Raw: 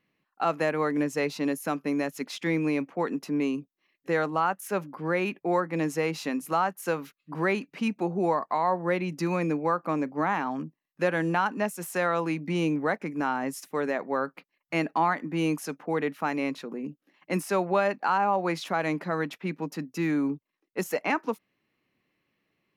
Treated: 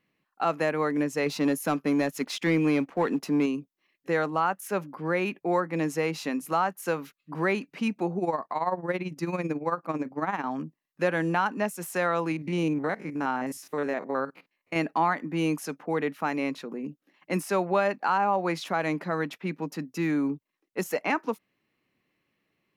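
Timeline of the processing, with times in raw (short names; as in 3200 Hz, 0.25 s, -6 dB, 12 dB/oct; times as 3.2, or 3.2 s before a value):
1.26–3.46 sample leveller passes 1
8.18–10.44 tremolo 18 Hz, depth 69%
12.32–14.76 stepped spectrum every 50 ms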